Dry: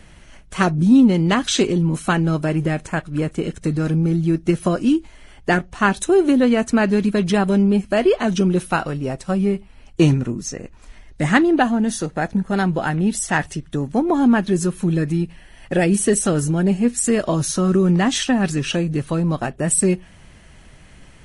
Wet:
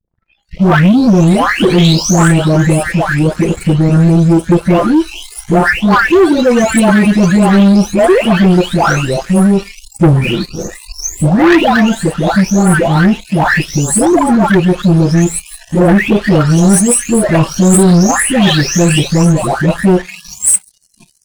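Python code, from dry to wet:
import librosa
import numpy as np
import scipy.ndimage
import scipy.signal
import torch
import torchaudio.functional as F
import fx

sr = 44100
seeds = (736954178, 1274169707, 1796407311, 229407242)

y = fx.spec_delay(x, sr, highs='late', ms=752)
y = fx.leveller(y, sr, passes=3)
y = fx.noise_reduce_blind(y, sr, reduce_db=29)
y = y * 10.0 ** (2.5 / 20.0)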